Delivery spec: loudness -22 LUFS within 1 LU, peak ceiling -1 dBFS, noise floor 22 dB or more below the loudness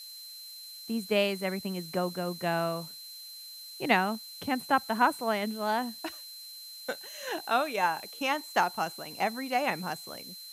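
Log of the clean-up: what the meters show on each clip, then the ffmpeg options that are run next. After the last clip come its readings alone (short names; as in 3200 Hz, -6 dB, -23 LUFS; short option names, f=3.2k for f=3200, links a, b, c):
steady tone 4100 Hz; tone level -44 dBFS; noise floor -46 dBFS; noise floor target -53 dBFS; loudness -30.5 LUFS; peak -10.0 dBFS; loudness target -22.0 LUFS
-> -af "bandreject=f=4.1k:w=30"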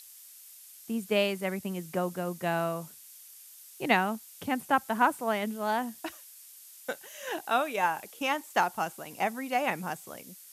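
steady tone none; noise floor -51 dBFS; noise floor target -53 dBFS
-> -af "afftdn=nr=6:nf=-51"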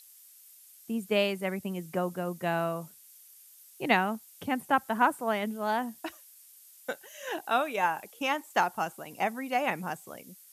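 noise floor -55 dBFS; loudness -30.5 LUFS; peak -10.5 dBFS; loudness target -22.0 LUFS
-> -af "volume=8.5dB"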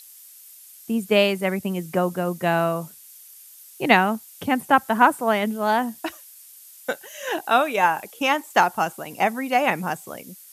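loudness -22.0 LUFS; peak -2.0 dBFS; noise floor -47 dBFS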